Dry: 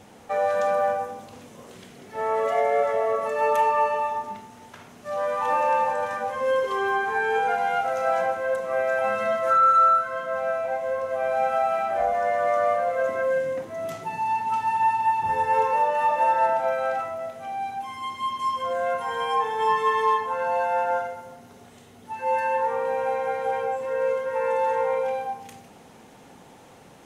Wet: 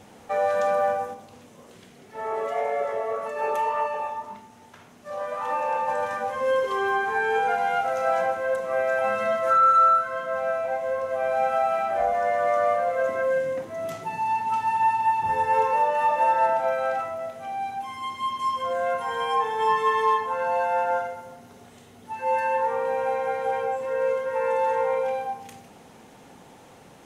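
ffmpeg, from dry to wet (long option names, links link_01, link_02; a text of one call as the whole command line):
ffmpeg -i in.wav -filter_complex "[0:a]asplit=3[link_01][link_02][link_03];[link_01]afade=type=out:start_time=1.13:duration=0.02[link_04];[link_02]flanger=delay=3.3:depth=9.5:regen=-67:speed=1.8:shape=sinusoidal,afade=type=in:start_time=1.13:duration=0.02,afade=type=out:start_time=5.87:duration=0.02[link_05];[link_03]afade=type=in:start_time=5.87:duration=0.02[link_06];[link_04][link_05][link_06]amix=inputs=3:normalize=0" out.wav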